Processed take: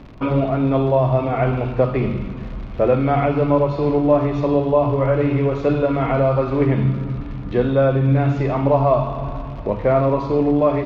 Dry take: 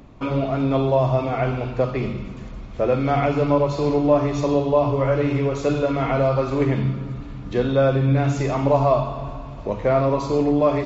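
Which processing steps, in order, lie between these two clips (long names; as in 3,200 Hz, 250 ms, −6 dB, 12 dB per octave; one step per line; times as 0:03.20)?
in parallel at −2 dB: speech leveller within 5 dB 0.5 s
on the sum: surface crackle 130 per second −24 dBFS
high-frequency loss of the air 270 metres
level −2 dB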